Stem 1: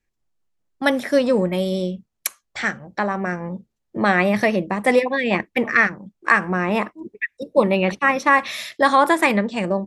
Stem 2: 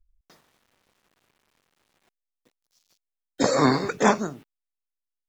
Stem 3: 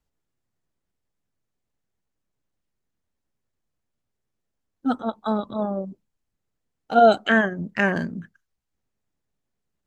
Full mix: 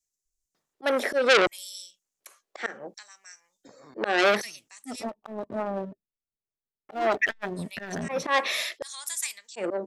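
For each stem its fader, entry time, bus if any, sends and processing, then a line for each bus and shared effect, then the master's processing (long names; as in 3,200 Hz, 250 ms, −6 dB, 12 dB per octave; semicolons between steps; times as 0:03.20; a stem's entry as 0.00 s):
+1.0 dB, 0.00 s, muted 0:05.04–0:06.89, no send, auto-filter high-pass square 0.68 Hz 420–6,600 Hz
−16.5 dB, 0.25 s, no send, downward compressor 3 to 1, threshold −25 dBFS, peak gain reduction 9 dB; automatic ducking −9 dB, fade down 0.85 s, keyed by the first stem
−14.0 dB, 0.00 s, no send, adaptive Wiener filter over 25 samples; leveller curve on the samples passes 3; hollow resonant body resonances 410/620/1,800 Hz, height 9 dB, ringing for 45 ms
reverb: not used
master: volume swells 194 ms; saturating transformer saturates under 2,800 Hz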